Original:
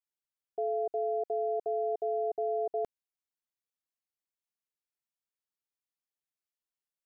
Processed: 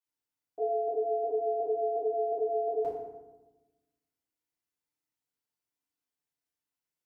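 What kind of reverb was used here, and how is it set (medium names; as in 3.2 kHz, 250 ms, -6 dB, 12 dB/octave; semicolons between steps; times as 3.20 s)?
FDN reverb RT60 1.1 s, low-frequency decay 1.5×, high-frequency decay 0.6×, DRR -9 dB; trim -6.5 dB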